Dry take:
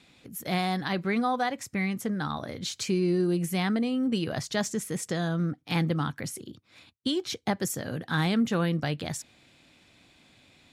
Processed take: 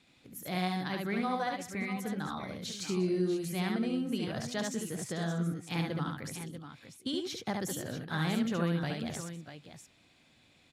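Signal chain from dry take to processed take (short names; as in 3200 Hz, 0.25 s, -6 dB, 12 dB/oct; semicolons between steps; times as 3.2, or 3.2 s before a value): tapped delay 71/195/628/645 ms -3/-17.5/-19.5/-10.5 dB; gain -7.5 dB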